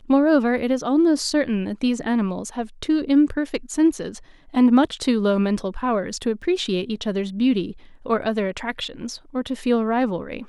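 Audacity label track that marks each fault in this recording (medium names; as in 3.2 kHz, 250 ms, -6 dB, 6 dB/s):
6.420000	6.420000	dropout 2.5 ms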